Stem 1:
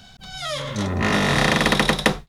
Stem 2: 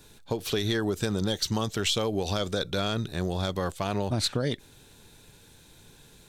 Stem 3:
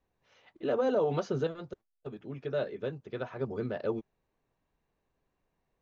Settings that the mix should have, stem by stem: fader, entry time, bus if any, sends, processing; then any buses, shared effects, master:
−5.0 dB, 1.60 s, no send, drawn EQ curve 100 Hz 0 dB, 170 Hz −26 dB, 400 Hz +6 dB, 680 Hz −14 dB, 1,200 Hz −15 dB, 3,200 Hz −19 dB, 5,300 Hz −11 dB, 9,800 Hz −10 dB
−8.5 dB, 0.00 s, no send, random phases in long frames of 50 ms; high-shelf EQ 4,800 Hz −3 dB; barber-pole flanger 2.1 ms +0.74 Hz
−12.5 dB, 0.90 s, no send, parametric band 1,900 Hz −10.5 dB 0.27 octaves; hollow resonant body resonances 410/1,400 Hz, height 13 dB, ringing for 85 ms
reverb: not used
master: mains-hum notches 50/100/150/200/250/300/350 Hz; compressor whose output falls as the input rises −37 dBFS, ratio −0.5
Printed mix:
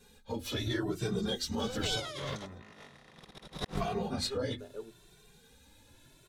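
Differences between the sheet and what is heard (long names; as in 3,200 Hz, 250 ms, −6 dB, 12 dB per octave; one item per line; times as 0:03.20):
stem 1: missing drawn EQ curve 100 Hz 0 dB, 170 Hz −26 dB, 400 Hz +6 dB, 680 Hz −14 dB, 1,200 Hz −15 dB, 3,200 Hz −19 dB, 5,300 Hz −11 dB, 9,800 Hz −10 dB
stem 3 −12.5 dB → −23.0 dB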